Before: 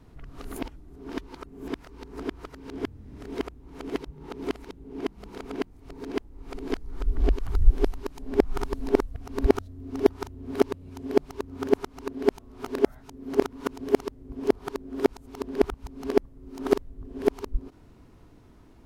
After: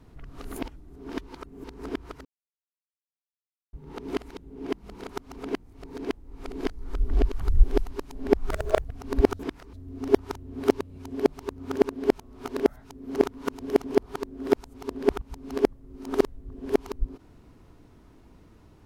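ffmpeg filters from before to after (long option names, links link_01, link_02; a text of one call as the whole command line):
ffmpeg -i in.wav -filter_complex "[0:a]asplit=12[link_01][link_02][link_03][link_04][link_05][link_06][link_07][link_08][link_09][link_10][link_11][link_12];[link_01]atrim=end=1.642[link_13];[link_02]atrim=start=1.978:end=2.59,asetpts=PTS-STARTPTS,afade=type=out:start_time=0.608:duration=0.004:curve=hsin[link_14];[link_03]atrim=start=2.59:end=4.07,asetpts=PTS-STARTPTS,volume=0[link_15];[link_04]atrim=start=4.07:end=5.432,asetpts=PTS-STARTPTS,afade=type=in:duration=0.004:curve=hsin[link_16];[link_05]atrim=start=11.758:end=12.032[link_17];[link_06]atrim=start=5.428:end=8.584[link_18];[link_07]atrim=start=8.58:end=9.1,asetpts=PTS-STARTPTS,asetrate=68796,aresample=44100[link_19];[link_08]atrim=start=9.096:end=9.652[link_20];[link_09]atrim=start=1.638:end=1.982[link_21];[link_10]atrim=start=9.648:end=11.762[link_22];[link_11]atrim=start=12.028:end=14.032[link_23];[link_12]atrim=start=14.368[link_24];[link_14][link_15][link_16]concat=n=3:v=0:a=1[link_25];[link_13][link_25]acrossfade=duration=0.004:curve1=hsin:curve2=hsin[link_26];[link_26][link_17]acrossfade=duration=0.004:curve1=hsin:curve2=hsin[link_27];[link_27][link_18]acrossfade=duration=0.004:curve1=hsin:curve2=hsin[link_28];[link_28][link_19]acrossfade=duration=0.004:curve1=hsin:curve2=hsin[link_29];[link_29][link_20]acrossfade=duration=0.004:curve1=hsin:curve2=hsin[link_30];[link_30][link_21]acrossfade=duration=0.004:curve1=hsin:curve2=hsin[link_31];[link_31][link_22]acrossfade=duration=0.004:curve1=hsin:curve2=hsin[link_32];[link_32][link_23]acrossfade=duration=0.004:curve1=hsin:curve2=hsin[link_33];[link_33][link_24]acrossfade=duration=0.004:curve1=hsin:curve2=hsin" out.wav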